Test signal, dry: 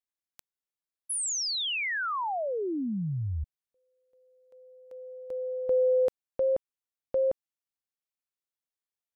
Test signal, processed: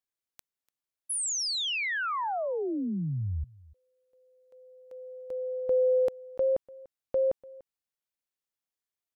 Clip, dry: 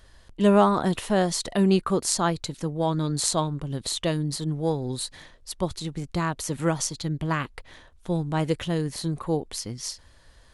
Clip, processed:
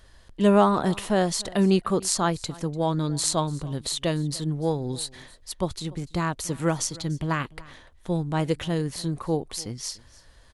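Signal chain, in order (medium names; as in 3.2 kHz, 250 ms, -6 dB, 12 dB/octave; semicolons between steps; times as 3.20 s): delay 293 ms -22 dB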